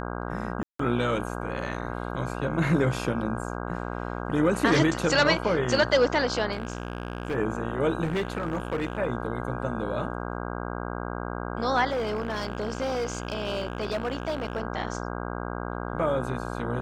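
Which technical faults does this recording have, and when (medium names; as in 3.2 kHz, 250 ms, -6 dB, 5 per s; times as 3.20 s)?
buzz 60 Hz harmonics 27 -33 dBFS
0.63–0.79 s: dropout 164 ms
6.52–7.36 s: clipped -25 dBFS
8.03–8.99 s: clipped -23.5 dBFS
11.90–14.62 s: clipped -24 dBFS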